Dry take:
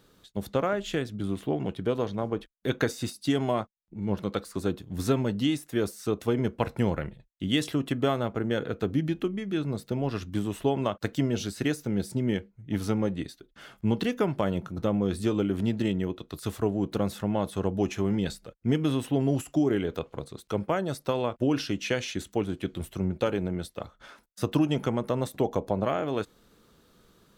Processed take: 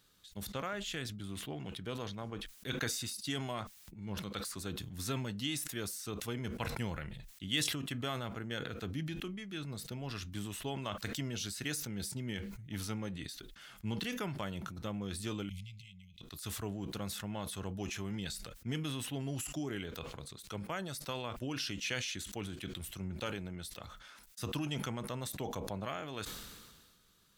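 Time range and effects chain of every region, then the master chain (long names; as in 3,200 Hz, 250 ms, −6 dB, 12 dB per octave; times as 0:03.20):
0:15.49–0:16.21: high-shelf EQ 9,000 Hz −7.5 dB + downward compressor 4 to 1, threshold −36 dBFS + linear-phase brick-wall band-stop 190–2,000 Hz
whole clip: guitar amp tone stack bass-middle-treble 5-5-5; level that may fall only so fast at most 36 dB per second; level +4 dB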